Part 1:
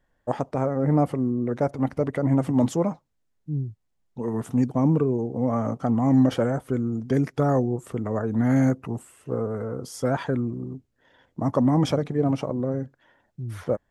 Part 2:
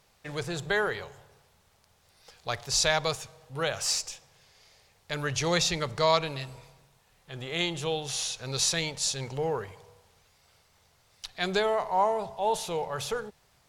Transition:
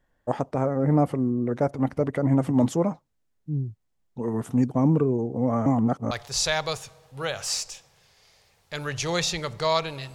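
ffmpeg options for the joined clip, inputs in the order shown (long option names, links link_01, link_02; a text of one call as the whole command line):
ffmpeg -i cue0.wav -i cue1.wav -filter_complex "[0:a]apad=whole_dur=10.14,atrim=end=10.14,asplit=2[link_01][link_02];[link_01]atrim=end=5.662[link_03];[link_02]atrim=start=5.658:end=6.112,asetpts=PTS-STARTPTS,areverse[link_04];[1:a]atrim=start=2.488:end=6.52[link_05];[link_03][link_04]acrossfade=duration=0.004:curve1=hsin:curve2=hsin[link_06];[link_06][link_05]acrossfade=duration=0.004:curve1=hsin:curve2=hsin" out.wav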